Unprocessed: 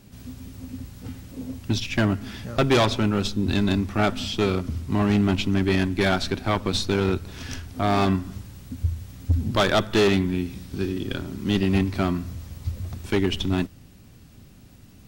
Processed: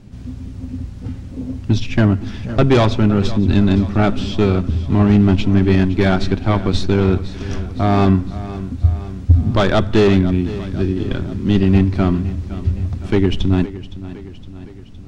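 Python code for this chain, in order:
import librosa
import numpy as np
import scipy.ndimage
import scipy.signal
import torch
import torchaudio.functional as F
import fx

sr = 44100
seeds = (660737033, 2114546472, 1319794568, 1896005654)

y = scipy.signal.sosfilt(scipy.signal.butter(2, 8400.0, 'lowpass', fs=sr, output='sos'), x)
y = fx.tilt_eq(y, sr, slope=-2.0)
y = fx.echo_feedback(y, sr, ms=513, feedback_pct=57, wet_db=-15.5)
y = y * librosa.db_to_amplitude(3.5)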